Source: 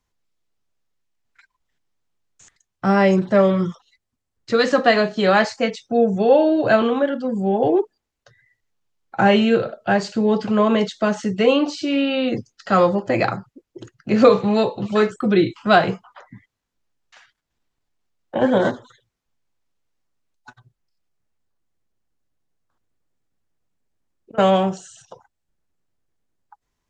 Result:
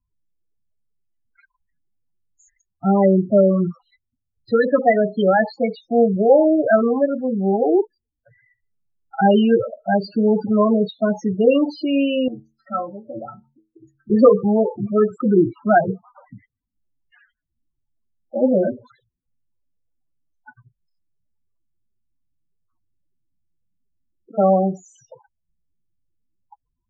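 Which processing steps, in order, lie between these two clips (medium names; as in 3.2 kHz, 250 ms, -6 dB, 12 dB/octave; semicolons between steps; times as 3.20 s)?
loudest bins only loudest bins 8; 12.28–14.10 s: inharmonic resonator 66 Hz, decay 0.45 s, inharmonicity 0.03; trim +1.5 dB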